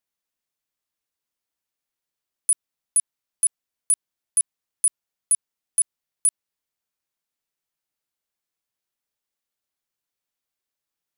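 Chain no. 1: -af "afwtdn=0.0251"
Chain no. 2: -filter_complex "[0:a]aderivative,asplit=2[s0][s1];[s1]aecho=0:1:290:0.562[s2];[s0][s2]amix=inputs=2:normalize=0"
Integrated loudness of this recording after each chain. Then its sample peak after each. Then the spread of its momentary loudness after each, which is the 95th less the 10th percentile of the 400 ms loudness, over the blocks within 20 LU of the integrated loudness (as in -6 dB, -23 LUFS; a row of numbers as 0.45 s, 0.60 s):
-24.5 LUFS, -20.5 LUFS; -12.0 dBFS, -11.0 dBFS; 2 LU, 6 LU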